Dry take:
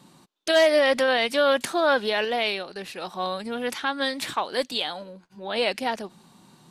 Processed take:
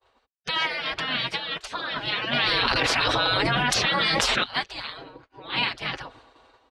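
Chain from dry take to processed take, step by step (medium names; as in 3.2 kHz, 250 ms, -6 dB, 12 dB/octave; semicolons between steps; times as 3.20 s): low-pass 3.2 kHz 12 dB/octave; bass shelf 140 Hz +11.5 dB; expander -45 dBFS; high-pass 71 Hz 12 dB/octave; tilt EQ -1.5 dB/octave; peak limiter -16 dBFS, peak gain reduction 6.5 dB; comb 6.2 ms, depth 78%; level rider gain up to 11.5 dB; spectral gate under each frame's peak -20 dB weak; 2.33–4.44 s: level flattener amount 100%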